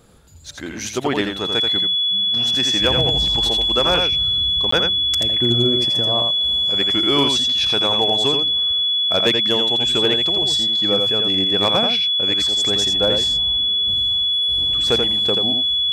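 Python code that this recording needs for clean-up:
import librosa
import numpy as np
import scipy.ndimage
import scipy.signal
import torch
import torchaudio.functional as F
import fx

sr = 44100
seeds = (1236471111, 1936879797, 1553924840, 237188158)

y = fx.fix_declip(x, sr, threshold_db=-8.0)
y = fx.notch(y, sr, hz=3400.0, q=30.0)
y = fx.fix_interpolate(y, sr, at_s=(4.71,), length_ms=14.0)
y = fx.fix_echo_inverse(y, sr, delay_ms=84, level_db=-5.0)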